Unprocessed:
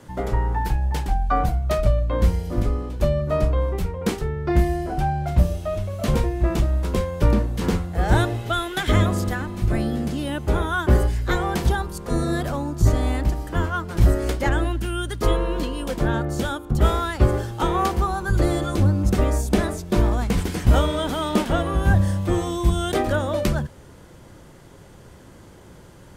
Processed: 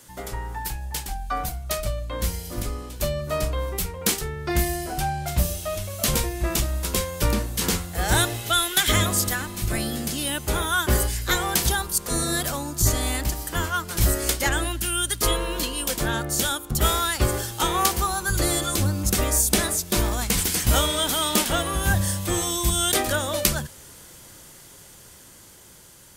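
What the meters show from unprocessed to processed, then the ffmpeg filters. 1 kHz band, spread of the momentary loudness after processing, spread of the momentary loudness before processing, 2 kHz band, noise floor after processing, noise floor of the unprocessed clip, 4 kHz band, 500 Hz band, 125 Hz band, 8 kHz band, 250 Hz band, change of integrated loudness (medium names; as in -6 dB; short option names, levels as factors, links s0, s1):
-1.5 dB, 9 LU, 6 LU, +2.5 dB, -47 dBFS, -46 dBFS, +8.5 dB, -4.0 dB, -6.0 dB, +15.0 dB, -5.0 dB, -1.0 dB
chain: -af "dynaudnorm=f=790:g=7:m=3.76,crystalizer=i=9.5:c=0,volume=0.282"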